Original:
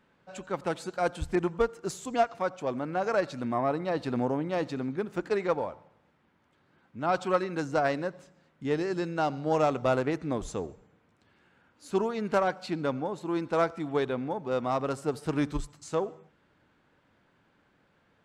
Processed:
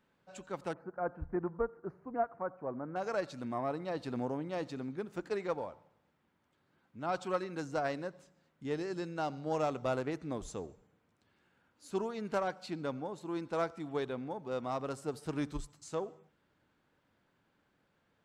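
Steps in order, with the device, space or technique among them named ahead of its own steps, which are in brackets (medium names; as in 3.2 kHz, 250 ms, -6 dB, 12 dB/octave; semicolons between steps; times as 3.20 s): 0.73–2.96 s: inverse Chebyshev low-pass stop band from 3.2 kHz, stop band 40 dB; exciter from parts (in parallel at -7 dB: high-pass 3 kHz 12 dB/octave + saturation -32 dBFS, distortion -18 dB); on the sum: trim -7.5 dB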